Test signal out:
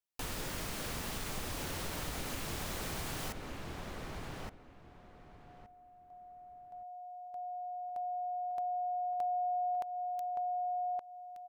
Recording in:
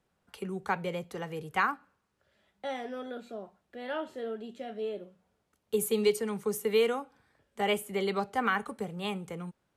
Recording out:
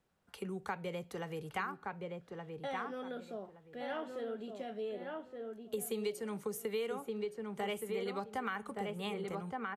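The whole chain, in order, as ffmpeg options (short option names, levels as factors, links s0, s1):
-filter_complex "[0:a]asplit=2[s0][s1];[s1]adelay=1170,lowpass=f=1900:p=1,volume=0.562,asplit=2[s2][s3];[s3]adelay=1170,lowpass=f=1900:p=1,volume=0.22,asplit=2[s4][s5];[s5]adelay=1170,lowpass=f=1900:p=1,volume=0.22[s6];[s0][s2][s4][s6]amix=inputs=4:normalize=0,acompressor=threshold=0.02:ratio=3,volume=0.75"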